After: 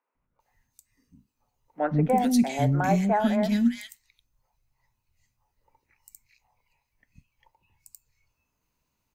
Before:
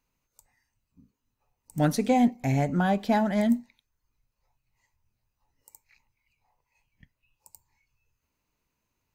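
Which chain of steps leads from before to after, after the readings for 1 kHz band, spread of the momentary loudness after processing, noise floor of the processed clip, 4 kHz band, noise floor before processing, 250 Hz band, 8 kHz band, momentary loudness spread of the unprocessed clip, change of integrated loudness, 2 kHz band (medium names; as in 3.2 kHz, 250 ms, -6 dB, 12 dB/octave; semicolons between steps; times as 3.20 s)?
+2.0 dB, 6 LU, -80 dBFS, +2.0 dB, -82 dBFS, +1.0 dB, +2.5 dB, 4 LU, +1.0 dB, 0.0 dB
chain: three bands offset in time mids, lows, highs 150/400 ms, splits 360/2000 Hz; trim +2.5 dB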